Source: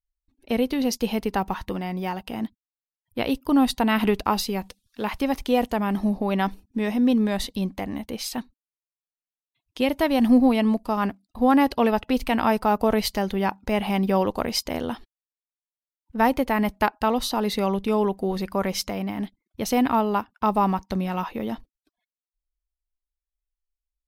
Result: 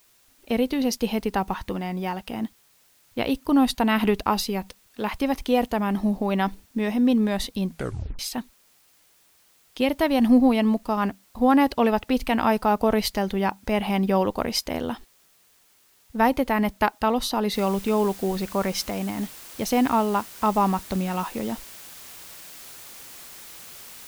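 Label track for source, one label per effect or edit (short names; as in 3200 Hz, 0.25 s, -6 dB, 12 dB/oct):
7.670000	7.670000	tape stop 0.52 s
17.540000	17.540000	noise floor step -60 dB -43 dB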